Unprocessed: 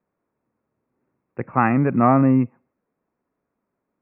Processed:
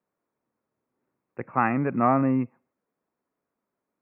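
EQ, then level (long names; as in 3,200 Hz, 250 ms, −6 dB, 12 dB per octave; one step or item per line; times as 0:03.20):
low-shelf EQ 71 Hz −6.5 dB
low-shelf EQ 340 Hz −4.5 dB
−3.5 dB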